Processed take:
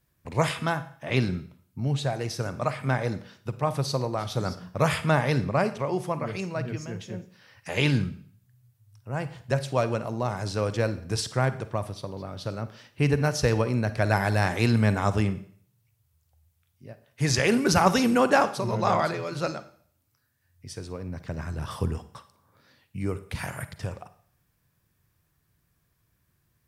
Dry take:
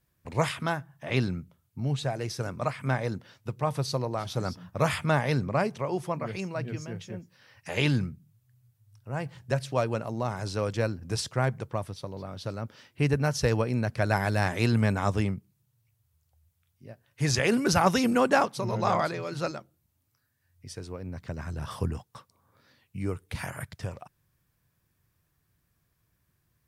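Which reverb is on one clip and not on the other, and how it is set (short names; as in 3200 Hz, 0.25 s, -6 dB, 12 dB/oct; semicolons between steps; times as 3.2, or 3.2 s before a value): Schroeder reverb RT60 0.55 s, DRR 12.5 dB; gain +2 dB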